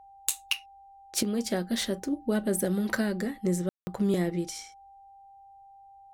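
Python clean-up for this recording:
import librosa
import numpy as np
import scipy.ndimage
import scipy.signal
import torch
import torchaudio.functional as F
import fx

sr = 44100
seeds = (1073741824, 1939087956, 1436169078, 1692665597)

y = fx.notch(x, sr, hz=790.0, q=30.0)
y = fx.fix_ambience(y, sr, seeds[0], print_start_s=5.0, print_end_s=5.5, start_s=3.69, end_s=3.87)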